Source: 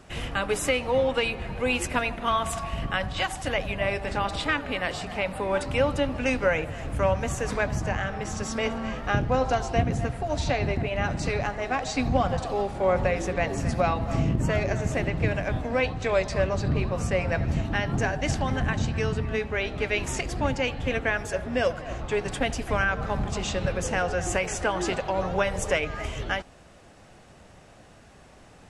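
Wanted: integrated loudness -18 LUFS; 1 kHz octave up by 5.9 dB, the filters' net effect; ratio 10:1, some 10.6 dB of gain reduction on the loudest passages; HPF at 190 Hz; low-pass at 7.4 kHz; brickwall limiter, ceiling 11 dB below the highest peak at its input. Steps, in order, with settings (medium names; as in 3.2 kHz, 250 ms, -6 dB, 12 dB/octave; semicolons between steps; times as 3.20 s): high-pass 190 Hz; low-pass 7.4 kHz; peaking EQ 1 kHz +8 dB; compression 10:1, threshold -26 dBFS; trim +17 dB; peak limiter -8.5 dBFS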